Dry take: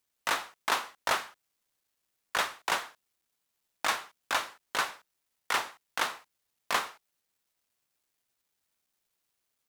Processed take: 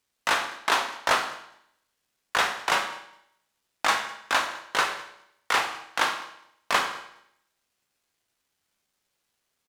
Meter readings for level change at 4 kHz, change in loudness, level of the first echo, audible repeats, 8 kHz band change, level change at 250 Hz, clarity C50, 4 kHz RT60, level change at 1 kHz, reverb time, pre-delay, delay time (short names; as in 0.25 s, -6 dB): +5.5 dB, +6.0 dB, -23.0 dB, 1, +3.5 dB, +6.5 dB, 8.5 dB, 0.75 s, +6.5 dB, 0.75 s, 14 ms, 0.206 s